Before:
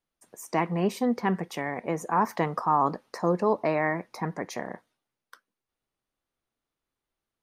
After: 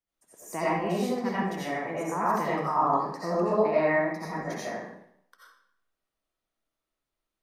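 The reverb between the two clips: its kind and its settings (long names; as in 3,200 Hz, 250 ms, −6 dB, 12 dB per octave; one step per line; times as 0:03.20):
comb and all-pass reverb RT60 0.69 s, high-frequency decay 0.9×, pre-delay 45 ms, DRR −9 dB
level −9 dB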